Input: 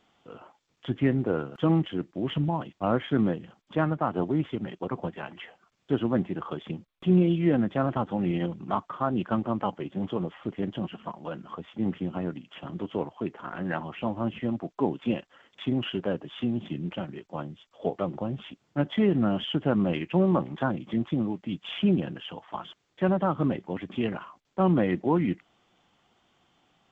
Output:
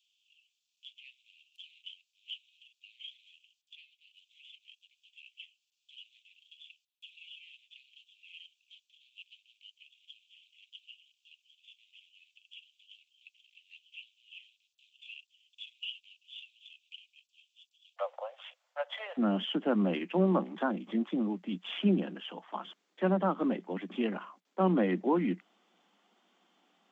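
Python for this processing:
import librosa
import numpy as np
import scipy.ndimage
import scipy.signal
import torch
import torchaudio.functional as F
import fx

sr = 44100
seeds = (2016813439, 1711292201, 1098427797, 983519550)

y = fx.steep_highpass(x, sr, hz=fx.steps((0.0, 2500.0), (17.96, 510.0), (19.17, 180.0)), slope=96)
y = F.gain(torch.from_numpy(y), -3.0).numpy()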